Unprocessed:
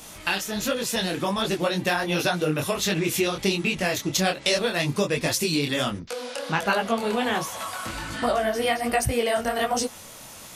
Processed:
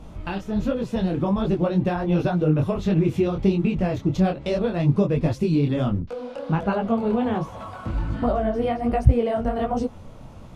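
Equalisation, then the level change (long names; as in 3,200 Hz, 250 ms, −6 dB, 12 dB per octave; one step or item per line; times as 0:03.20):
RIAA equalisation playback
parametric band 1,800 Hz −6 dB 0.54 octaves
high-shelf EQ 2,800 Hz −12 dB
−1.0 dB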